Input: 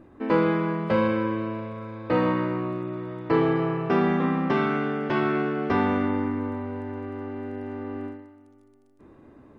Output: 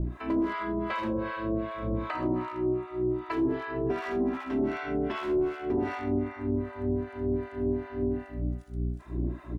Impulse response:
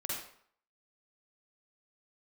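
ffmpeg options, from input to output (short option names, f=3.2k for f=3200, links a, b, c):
-filter_complex "[0:a]aecho=1:1:3:0.99,asplit=2[a][b];[b]highpass=82[c];[1:a]atrim=start_sample=2205,lowshelf=f=370:g=9,adelay=76[d];[c][d]afir=irnorm=-1:irlink=0,volume=-4dB[e];[a][e]amix=inputs=2:normalize=0,asoftclip=type=hard:threshold=-11.5dB,aeval=exprs='val(0)+0.02*(sin(2*PI*60*n/s)+sin(2*PI*2*60*n/s)/2+sin(2*PI*3*60*n/s)/3+sin(2*PI*4*60*n/s)/4+sin(2*PI*5*60*n/s)/5)':c=same,acompressor=threshold=-30dB:ratio=12,acrossover=split=710[f][g];[f]aeval=exprs='val(0)*(1-1/2+1/2*cos(2*PI*2.6*n/s))':c=same[h];[g]aeval=exprs='val(0)*(1-1/2-1/2*cos(2*PI*2.6*n/s))':c=same[i];[h][i]amix=inputs=2:normalize=0,volume=7.5dB"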